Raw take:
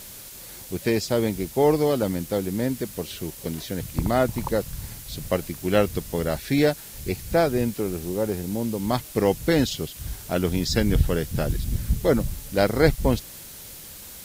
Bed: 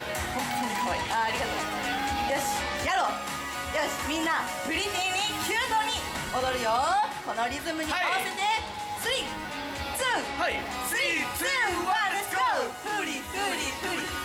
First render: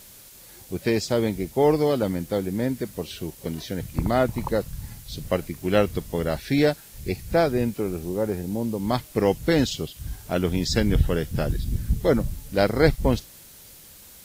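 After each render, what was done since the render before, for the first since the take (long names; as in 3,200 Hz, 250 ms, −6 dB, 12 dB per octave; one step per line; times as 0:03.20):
noise reduction from a noise print 6 dB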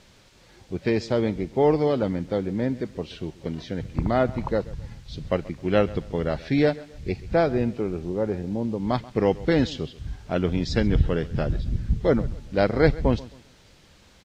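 high-frequency loss of the air 150 metres
repeating echo 133 ms, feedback 33%, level −20 dB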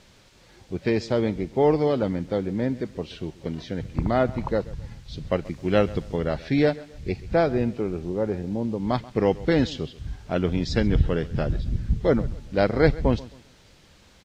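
0:05.45–0:06.16: bass and treble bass +1 dB, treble +4 dB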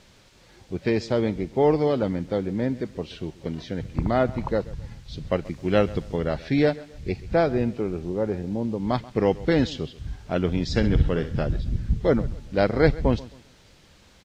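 0:10.66–0:11.39: flutter between parallel walls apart 11.1 metres, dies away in 0.34 s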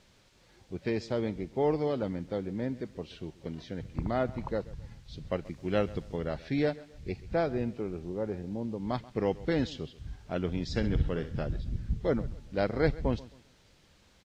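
level −8 dB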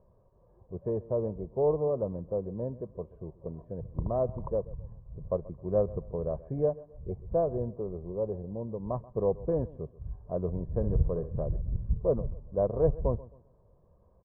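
Chebyshev low-pass filter 980 Hz, order 4
comb filter 1.8 ms, depth 63%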